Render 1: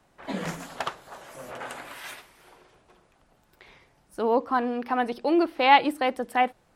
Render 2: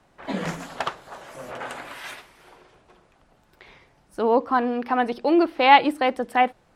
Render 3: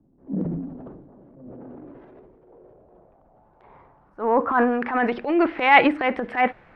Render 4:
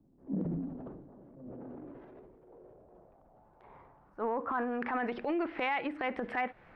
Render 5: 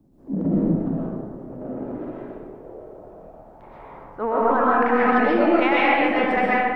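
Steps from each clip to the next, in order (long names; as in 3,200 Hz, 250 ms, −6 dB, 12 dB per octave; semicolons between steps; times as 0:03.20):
high-shelf EQ 9,100 Hz −9 dB; level +3.5 dB
low-pass filter sweep 270 Hz → 2,100 Hz, 0:01.55–0:05.15; transient designer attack −10 dB, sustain +7 dB
downward compressor 20 to 1, threshold −24 dBFS, peak gain reduction 17 dB; level −5 dB
comb and all-pass reverb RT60 1.4 s, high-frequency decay 0.6×, pre-delay 90 ms, DRR −7 dB; level +8 dB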